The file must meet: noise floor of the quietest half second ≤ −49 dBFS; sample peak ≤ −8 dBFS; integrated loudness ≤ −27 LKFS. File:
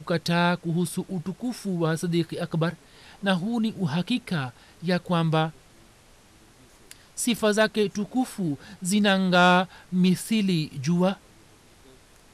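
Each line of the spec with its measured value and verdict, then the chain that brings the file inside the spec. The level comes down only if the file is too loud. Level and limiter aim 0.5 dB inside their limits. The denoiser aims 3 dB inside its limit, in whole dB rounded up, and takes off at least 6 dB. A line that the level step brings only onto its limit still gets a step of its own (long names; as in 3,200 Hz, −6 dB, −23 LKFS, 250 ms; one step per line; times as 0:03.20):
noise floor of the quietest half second −54 dBFS: in spec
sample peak −10.0 dBFS: in spec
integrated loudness −25.0 LKFS: out of spec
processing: level −2.5 dB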